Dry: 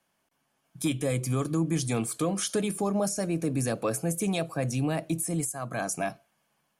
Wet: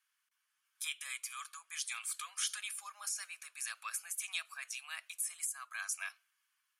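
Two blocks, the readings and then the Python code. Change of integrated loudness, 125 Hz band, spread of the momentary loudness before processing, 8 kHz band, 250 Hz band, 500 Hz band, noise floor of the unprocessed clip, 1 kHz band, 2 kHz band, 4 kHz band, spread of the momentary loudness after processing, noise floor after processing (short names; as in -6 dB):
-10.5 dB, under -40 dB, 4 LU, -5.0 dB, under -40 dB, under -40 dB, -75 dBFS, -13.0 dB, -3.0 dB, -3.0 dB, 7 LU, -83 dBFS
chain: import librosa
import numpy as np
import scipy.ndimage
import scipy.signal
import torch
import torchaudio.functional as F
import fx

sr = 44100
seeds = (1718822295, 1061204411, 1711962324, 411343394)

y = scipy.signal.sosfilt(scipy.signal.butter(6, 1200.0, 'highpass', fs=sr, output='sos'), x)
y = fx.dynamic_eq(y, sr, hz=2700.0, q=1.5, threshold_db=-50.0, ratio=4.0, max_db=4)
y = y * librosa.db_to_amplitude(-5.0)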